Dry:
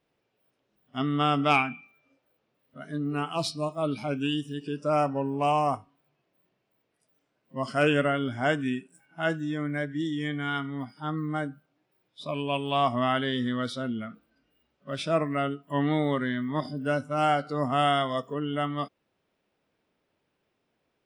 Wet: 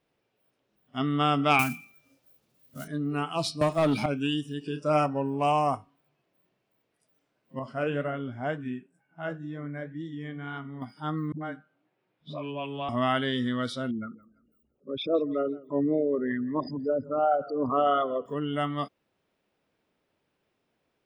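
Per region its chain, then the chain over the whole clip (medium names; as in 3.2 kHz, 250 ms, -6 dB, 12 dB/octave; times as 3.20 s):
1.59–2.88 s: block-companded coder 5-bit + tone controls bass +8 dB, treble +14 dB
3.61–4.06 s: waveshaping leveller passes 2 + three bands compressed up and down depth 70%
4.61–5.06 s: dynamic bell 3.2 kHz, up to +5 dB, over -46 dBFS, Q 1.3 + doubling 33 ms -9.5 dB
7.59–10.82 s: low-pass 1.2 kHz 6 dB/octave + peaking EQ 320 Hz -4 dB 0.35 oct + flange 2 Hz, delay 4.5 ms, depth 5.7 ms, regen -67%
11.32–12.89 s: phase dispersion highs, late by 93 ms, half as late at 300 Hz + compression 2:1, threshold -34 dBFS + band-pass 110–3200 Hz
13.91–18.26 s: resonances exaggerated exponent 3 + modulated delay 168 ms, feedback 32%, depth 109 cents, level -21.5 dB
whole clip: none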